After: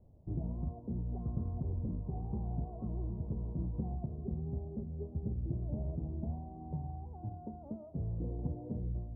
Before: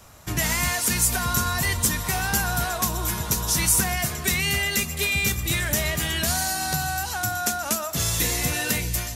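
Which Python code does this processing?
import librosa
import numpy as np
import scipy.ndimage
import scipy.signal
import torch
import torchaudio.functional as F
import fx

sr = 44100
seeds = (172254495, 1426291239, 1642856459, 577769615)

y = scipy.ndimage.gaussian_filter1d(x, 17.0, mode='constant')
y = fx.doppler_dist(y, sr, depth_ms=0.35)
y = y * 10.0 ** (-7.5 / 20.0)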